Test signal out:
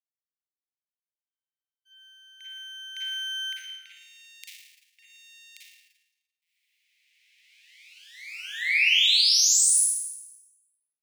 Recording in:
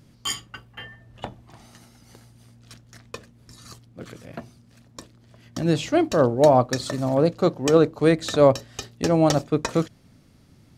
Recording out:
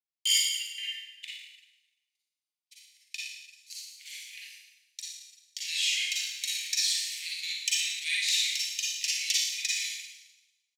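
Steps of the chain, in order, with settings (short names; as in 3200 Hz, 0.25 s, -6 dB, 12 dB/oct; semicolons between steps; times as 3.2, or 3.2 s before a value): half-wave gain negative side -3 dB; gate -43 dBFS, range -44 dB; steep high-pass 2100 Hz 72 dB/oct; in parallel at -1.5 dB: compressor, threshold -44 dBFS; on the sum: frequency-shifting echo 0.165 s, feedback 33%, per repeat -76 Hz, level -24 dB; Schroeder reverb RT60 1 s, DRR -6 dB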